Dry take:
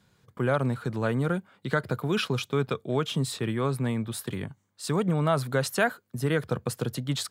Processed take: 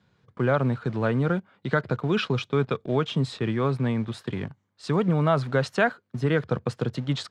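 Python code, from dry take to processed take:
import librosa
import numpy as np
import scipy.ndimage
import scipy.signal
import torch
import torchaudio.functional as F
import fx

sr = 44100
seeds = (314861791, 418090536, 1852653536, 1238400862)

p1 = scipy.signal.sosfilt(scipy.signal.butter(2, 51.0, 'highpass', fs=sr, output='sos'), x)
p2 = np.where(np.abs(p1) >= 10.0 ** (-35.0 / 20.0), p1, 0.0)
p3 = p1 + F.gain(torch.from_numpy(p2), -7.5).numpy()
y = fx.air_absorb(p3, sr, metres=140.0)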